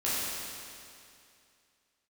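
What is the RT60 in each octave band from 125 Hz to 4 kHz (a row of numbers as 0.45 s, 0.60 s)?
2.5 s, 2.5 s, 2.5 s, 2.5 s, 2.5 s, 2.4 s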